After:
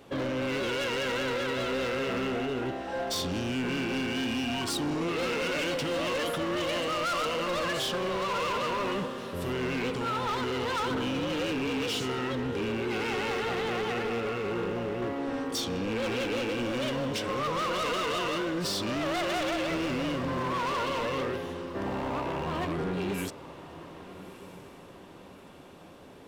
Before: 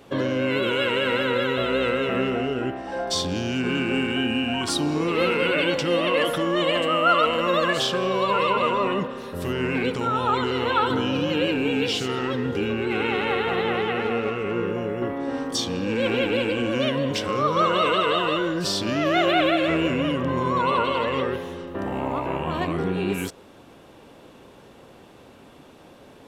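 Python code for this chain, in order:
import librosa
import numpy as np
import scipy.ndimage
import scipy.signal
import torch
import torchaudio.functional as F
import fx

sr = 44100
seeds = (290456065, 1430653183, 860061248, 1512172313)

y = np.clip(x, -10.0 ** (-24.5 / 20.0), 10.0 ** (-24.5 / 20.0))
y = fx.echo_diffused(y, sr, ms=1261, feedback_pct=45, wet_db=-15.5)
y = F.gain(torch.from_numpy(y), -3.5).numpy()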